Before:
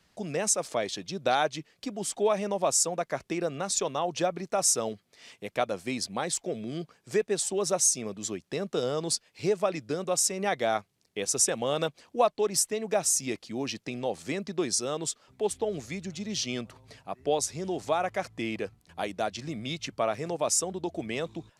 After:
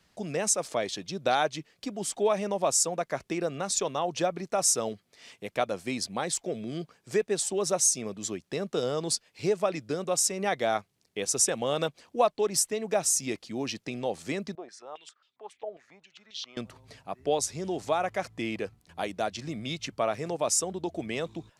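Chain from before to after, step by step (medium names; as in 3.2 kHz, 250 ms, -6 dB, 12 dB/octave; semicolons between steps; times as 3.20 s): 14.55–16.57 s: step-sequenced band-pass 7.4 Hz 690–3600 Hz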